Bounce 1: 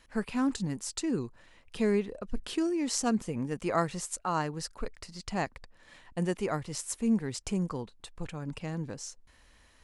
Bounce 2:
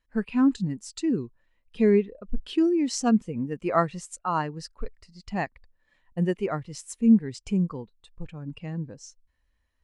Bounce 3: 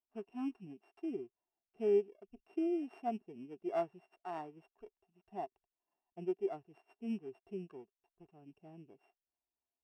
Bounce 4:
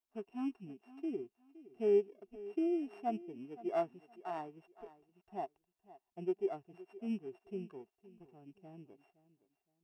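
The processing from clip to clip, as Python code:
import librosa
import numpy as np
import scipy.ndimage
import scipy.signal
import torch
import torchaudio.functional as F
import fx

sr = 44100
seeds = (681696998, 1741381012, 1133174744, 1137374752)

y1 = fx.dynamic_eq(x, sr, hz=2800.0, q=0.72, threshold_db=-50.0, ratio=4.0, max_db=6)
y1 = fx.spectral_expand(y1, sr, expansion=1.5)
y1 = y1 * 10.0 ** (3.5 / 20.0)
y2 = np.r_[np.sort(y1[:len(y1) // 16 * 16].reshape(-1, 16), axis=1).ravel(), y1[len(y1) // 16 * 16:]]
y2 = fx.double_bandpass(y2, sr, hz=520.0, octaves=0.82)
y2 = y2 * 10.0 ** (-5.0 / 20.0)
y3 = fx.echo_feedback(y2, sr, ms=516, feedback_pct=26, wet_db=-18)
y3 = y3 * 10.0 ** (1.0 / 20.0)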